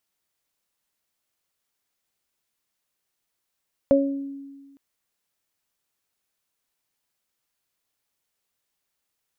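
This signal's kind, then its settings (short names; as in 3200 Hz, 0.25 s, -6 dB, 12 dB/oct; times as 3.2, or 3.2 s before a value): additive tone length 0.86 s, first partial 277 Hz, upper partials 5.5 dB, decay 1.55 s, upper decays 0.44 s, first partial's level -17 dB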